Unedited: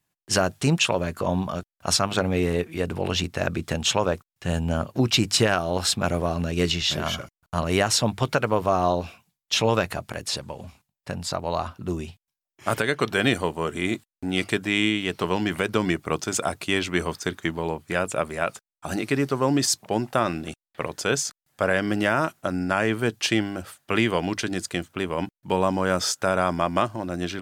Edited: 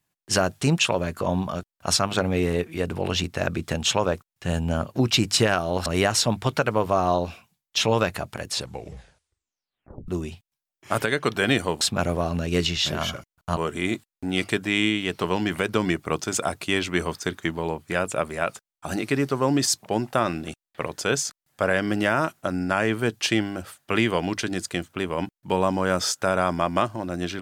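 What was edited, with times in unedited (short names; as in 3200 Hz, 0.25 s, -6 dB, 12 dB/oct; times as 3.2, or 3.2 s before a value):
5.86–7.62 move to 13.57
10.32 tape stop 1.52 s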